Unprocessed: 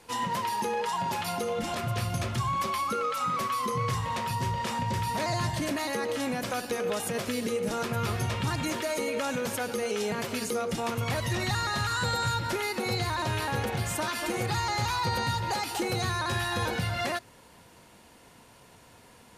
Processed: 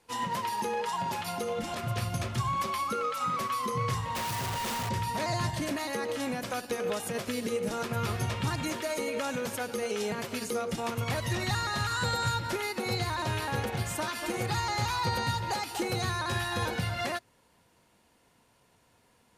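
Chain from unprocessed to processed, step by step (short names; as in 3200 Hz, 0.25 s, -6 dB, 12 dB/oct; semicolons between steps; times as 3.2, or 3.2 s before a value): 4.15–4.89 infinite clipping; upward expander 1.5:1, over -48 dBFS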